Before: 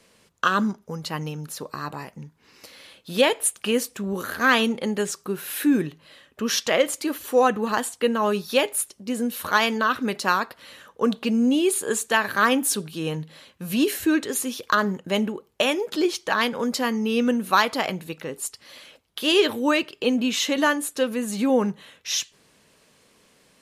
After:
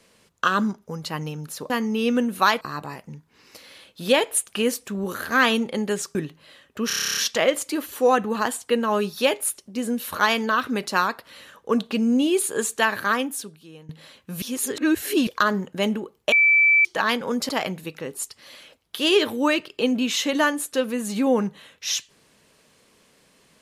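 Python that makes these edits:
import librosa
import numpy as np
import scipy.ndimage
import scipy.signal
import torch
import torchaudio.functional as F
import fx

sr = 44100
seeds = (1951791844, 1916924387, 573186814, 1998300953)

y = fx.edit(x, sr, fx.cut(start_s=5.24, length_s=0.53),
    fx.stutter(start_s=6.49, slice_s=0.03, count=11),
    fx.fade_out_to(start_s=12.27, length_s=0.94, curve='qua', floor_db=-18.5),
    fx.reverse_span(start_s=13.74, length_s=0.85),
    fx.bleep(start_s=15.64, length_s=0.53, hz=2320.0, db=-13.0),
    fx.move(start_s=16.81, length_s=0.91, to_s=1.7), tone=tone)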